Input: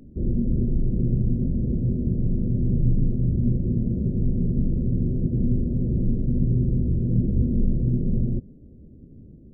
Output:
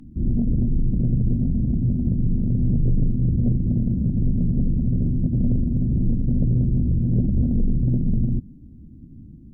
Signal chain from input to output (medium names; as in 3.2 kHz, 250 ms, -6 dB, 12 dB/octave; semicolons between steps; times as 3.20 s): high-order bell 500 Hz -16 dB 1 oct; sine folder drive 4 dB, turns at -8.5 dBFS; trim -4.5 dB